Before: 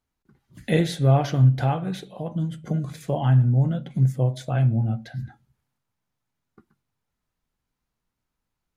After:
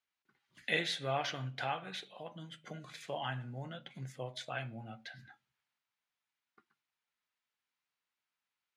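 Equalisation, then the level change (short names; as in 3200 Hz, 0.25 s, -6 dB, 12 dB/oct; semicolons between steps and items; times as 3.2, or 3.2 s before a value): band-pass 2600 Hz, Q 0.96; 0.0 dB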